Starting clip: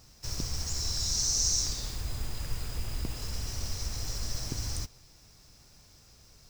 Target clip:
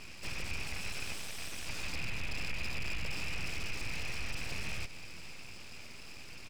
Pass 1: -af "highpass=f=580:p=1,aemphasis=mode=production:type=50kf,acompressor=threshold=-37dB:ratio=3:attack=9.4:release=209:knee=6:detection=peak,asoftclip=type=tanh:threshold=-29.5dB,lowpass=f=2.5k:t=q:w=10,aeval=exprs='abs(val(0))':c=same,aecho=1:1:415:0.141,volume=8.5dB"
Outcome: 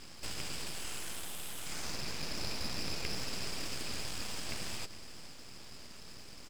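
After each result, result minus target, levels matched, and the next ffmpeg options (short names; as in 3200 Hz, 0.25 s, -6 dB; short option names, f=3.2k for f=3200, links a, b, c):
echo 0.19 s early; soft clip: distortion -9 dB; 500 Hz band +2.5 dB
-af "highpass=f=580:p=1,aemphasis=mode=production:type=50kf,acompressor=threshold=-37dB:ratio=3:attack=9.4:release=209:knee=6:detection=peak,asoftclip=type=tanh:threshold=-37.5dB,lowpass=f=2.5k:t=q:w=10,aeval=exprs='abs(val(0))':c=same,aecho=1:1:605:0.141,volume=8.5dB"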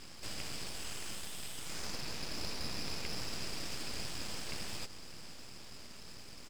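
500 Hz band +3.5 dB
-af "aemphasis=mode=production:type=50kf,acompressor=threshold=-37dB:ratio=3:attack=9.4:release=209:knee=6:detection=peak,asoftclip=type=tanh:threshold=-37.5dB,lowpass=f=2.5k:t=q:w=10,aeval=exprs='abs(val(0))':c=same,aecho=1:1:605:0.141,volume=8.5dB"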